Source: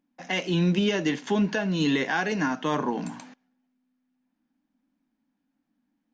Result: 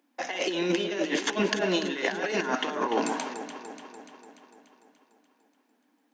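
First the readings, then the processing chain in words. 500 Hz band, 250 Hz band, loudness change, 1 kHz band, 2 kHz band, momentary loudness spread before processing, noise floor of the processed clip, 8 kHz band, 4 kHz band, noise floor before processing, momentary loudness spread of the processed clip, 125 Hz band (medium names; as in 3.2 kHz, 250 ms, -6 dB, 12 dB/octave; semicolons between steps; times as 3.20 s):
+1.0 dB, -5.0 dB, -2.5 dB, 0.0 dB, -1.0 dB, 7 LU, -71 dBFS, no reading, +1.0 dB, -79 dBFS, 16 LU, -12.0 dB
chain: high-pass 320 Hz 24 dB/octave; compressor with a negative ratio -33 dBFS, ratio -0.5; echo whose repeats swap between lows and highs 146 ms, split 1.5 kHz, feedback 77%, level -8 dB; trim +5.5 dB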